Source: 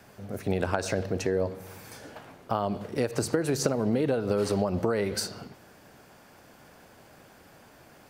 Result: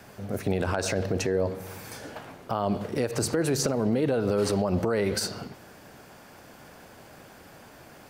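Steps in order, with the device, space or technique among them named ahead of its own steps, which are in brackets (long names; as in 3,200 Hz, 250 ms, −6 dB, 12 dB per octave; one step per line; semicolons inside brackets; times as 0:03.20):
clipper into limiter (hard clipping −14.5 dBFS, distortion −30 dB; brickwall limiter −21 dBFS, peak gain reduction 6.5 dB)
level +4.5 dB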